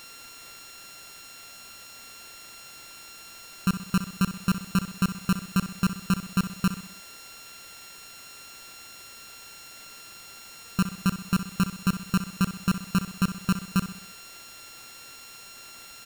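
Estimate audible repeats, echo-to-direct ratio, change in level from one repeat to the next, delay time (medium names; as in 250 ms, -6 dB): 4, -10.5 dB, -6.0 dB, 64 ms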